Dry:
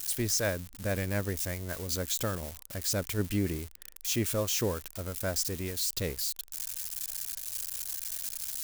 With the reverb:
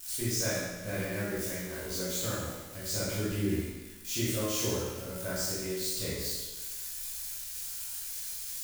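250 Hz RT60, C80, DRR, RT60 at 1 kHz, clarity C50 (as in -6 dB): 1.2 s, 1.0 dB, -9.5 dB, 1.2 s, -2.0 dB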